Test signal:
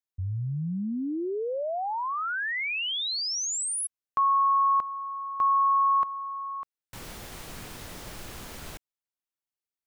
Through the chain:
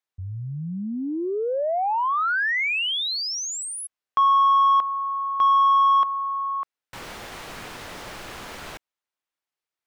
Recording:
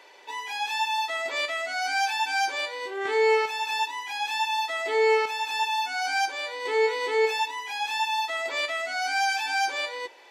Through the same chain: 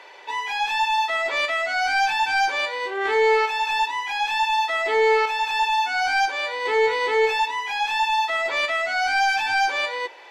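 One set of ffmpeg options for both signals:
-filter_complex "[0:a]asplit=2[a][b];[b]highpass=f=720:p=1,volume=12dB,asoftclip=type=tanh:threshold=-13dB[c];[a][c]amix=inputs=2:normalize=0,lowpass=f=2.3k:p=1,volume=-6dB,volume=2.5dB"

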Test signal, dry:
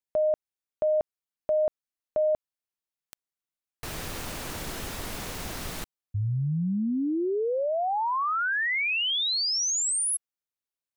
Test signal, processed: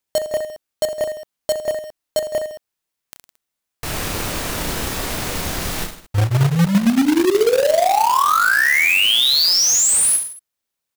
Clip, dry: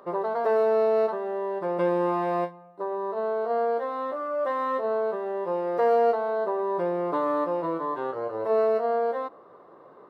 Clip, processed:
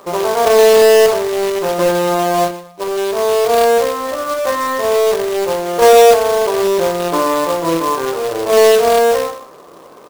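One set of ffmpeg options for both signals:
-af "acontrast=59,aecho=1:1:30|66|109.2|161|223.2:0.631|0.398|0.251|0.158|0.1,acrusher=bits=2:mode=log:mix=0:aa=0.000001,volume=2.5dB"

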